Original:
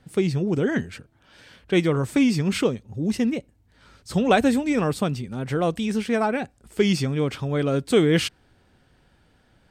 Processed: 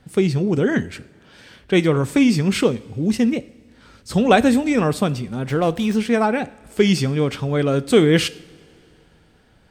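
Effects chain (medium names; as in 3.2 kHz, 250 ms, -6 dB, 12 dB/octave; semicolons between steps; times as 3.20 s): two-slope reverb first 0.59 s, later 2.9 s, from -16 dB, DRR 15.5 dB; 5.49–5.95 s: sliding maximum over 3 samples; trim +4 dB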